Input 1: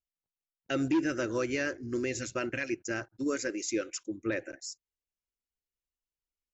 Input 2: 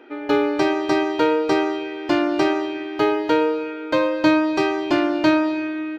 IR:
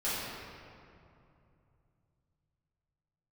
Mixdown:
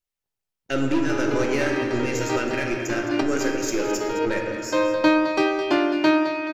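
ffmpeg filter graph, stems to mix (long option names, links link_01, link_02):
-filter_complex "[0:a]aeval=exprs='0.1*(cos(1*acos(clip(val(0)/0.1,-1,1)))-cos(1*PI/2))+0.00224*(cos(5*acos(clip(val(0)/0.1,-1,1)))-cos(5*PI/2))+0.00708*(cos(6*acos(clip(val(0)/0.1,-1,1)))-cos(6*PI/2))+0.002*(cos(7*acos(clip(val(0)/0.1,-1,1)))-cos(7*PI/2))':channel_layout=same,volume=2dB,asplit=4[link_01][link_02][link_03][link_04];[link_02]volume=-6dB[link_05];[link_03]volume=-10.5dB[link_06];[1:a]highpass=200,adelay=800,volume=-1dB,asplit=2[link_07][link_08];[link_08]volume=-11dB[link_09];[link_04]apad=whole_len=299013[link_10];[link_07][link_10]sidechaincompress=threshold=-40dB:ratio=8:attack=16:release=150[link_11];[2:a]atrim=start_sample=2205[link_12];[link_05][link_12]afir=irnorm=-1:irlink=0[link_13];[link_06][link_09]amix=inputs=2:normalize=0,aecho=0:1:214|428|642|856|1070|1284:1|0.41|0.168|0.0689|0.0283|0.0116[link_14];[link_01][link_11][link_13][link_14]amix=inputs=4:normalize=0"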